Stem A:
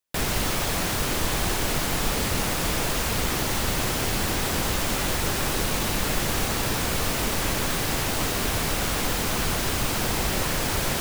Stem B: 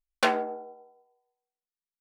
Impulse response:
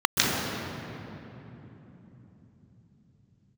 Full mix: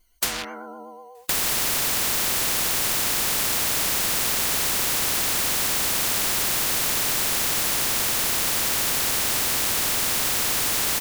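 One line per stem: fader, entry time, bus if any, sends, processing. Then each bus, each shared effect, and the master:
+1.5 dB, 1.15 s, send −21.5 dB, sub-octave generator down 2 octaves, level +1 dB
+3.0 dB, 0.00 s, no send, EQ curve with evenly spaced ripples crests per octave 1.9, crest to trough 17 dB; hard clipping −21 dBFS, distortion −7 dB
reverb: on, RT60 3.5 s, pre-delay 121 ms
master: pitch vibrato 8.2 Hz 51 cents; every bin compressed towards the loudest bin 10 to 1

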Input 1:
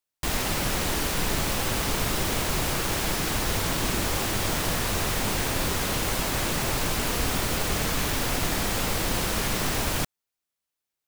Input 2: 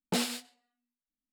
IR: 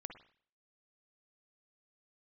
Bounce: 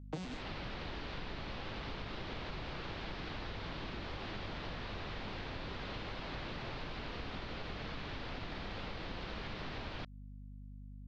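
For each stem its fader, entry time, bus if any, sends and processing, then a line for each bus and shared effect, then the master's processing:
−10.0 dB, 0.00 s, no send, Butterworth low-pass 4,400 Hz 36 dB per octave; mains hum 50 Hz, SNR 12 dB
0.0 dB, 0.00 s, no send, vocoder with an arpeggio as carrier major triad, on B2, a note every 81 ms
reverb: not used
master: downward compressor 6 to 1, threshold −39 dBFS, peak gain reduction 14 dB

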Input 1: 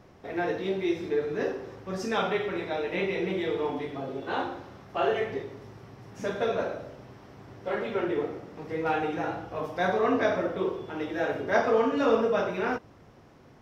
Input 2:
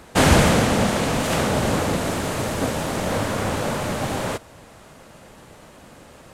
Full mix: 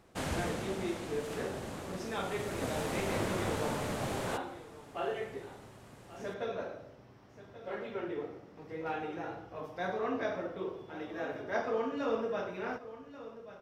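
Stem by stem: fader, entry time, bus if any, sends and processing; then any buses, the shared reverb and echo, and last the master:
−9.5 dB, 0.00 s, no send, echo send −14.5 dB, no processing
0:02.11 −21 dB → 0:02.79 −11 dB, 0.00 s, no send, no echo send, no processing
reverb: not used
echo: single-tap delay 1,135 ms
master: no processing

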